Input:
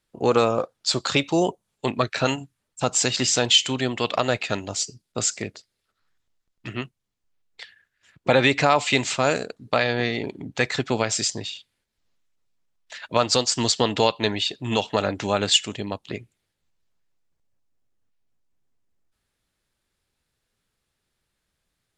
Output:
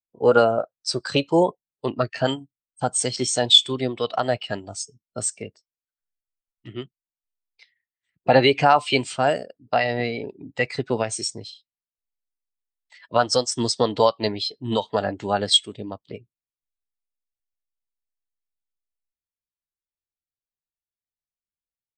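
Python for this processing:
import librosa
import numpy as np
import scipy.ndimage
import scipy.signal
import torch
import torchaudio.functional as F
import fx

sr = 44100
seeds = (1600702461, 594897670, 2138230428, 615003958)

y = fx.formant_shift(x, sr, semitones=2)
y = fx.spectral_expand(y, sr, expansion=1.5)
y = y * 10.0 ** (1.0 / 20.0)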